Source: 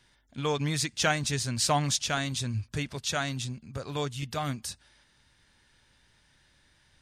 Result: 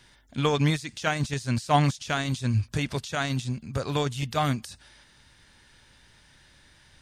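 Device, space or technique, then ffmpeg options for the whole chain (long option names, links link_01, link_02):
de-esser from a sidechain: -filter_complex "[0:a]asplit=2[link_01][link_02];[link_02]highpass=frequency=5500:width=0.5412,highpass=frequency=5500:width=1.3066,apad=whole_len=309439[link_03];[link_01][link_03]sidechaincompress=threshold=-48dB:ratio=20:attack=3.5:release=41,volume=7.5dB"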